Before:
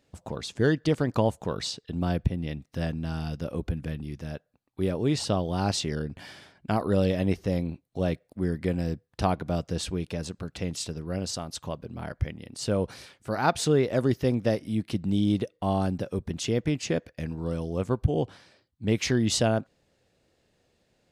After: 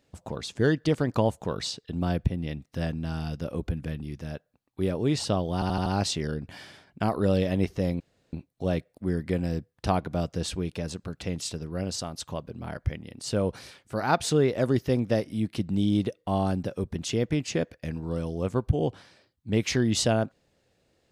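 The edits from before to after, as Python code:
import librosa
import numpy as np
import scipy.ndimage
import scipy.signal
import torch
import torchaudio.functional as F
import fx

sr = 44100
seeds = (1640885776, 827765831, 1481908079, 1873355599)

y = fx.edit(x, sr, fx.stutter(start_s=5.54, slice_s=0.08, count=5),
    fx.insert_room_tone(at_s=7.68, length_s=0.33), tone=tone)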